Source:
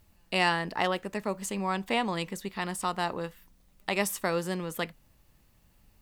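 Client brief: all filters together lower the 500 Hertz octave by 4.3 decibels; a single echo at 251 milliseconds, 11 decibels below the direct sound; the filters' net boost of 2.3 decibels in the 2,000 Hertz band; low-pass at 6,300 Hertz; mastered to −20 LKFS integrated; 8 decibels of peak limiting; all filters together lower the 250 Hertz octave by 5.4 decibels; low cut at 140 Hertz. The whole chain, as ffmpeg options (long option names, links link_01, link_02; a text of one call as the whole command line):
ffmpeg -i in.wav -af "highpass=140,lowpass=6300,equalizer=frequency=250:width_type=o:gain=-6,equalizer=frequency=500:width_type=o:gain=-4,equalizer=frequency=2000:width_type=o:gain=3,alimiter=limit=-17.5dB:level=0:latency=1,aecho=1:1:251:0.282,volume=13.5dB" out.wav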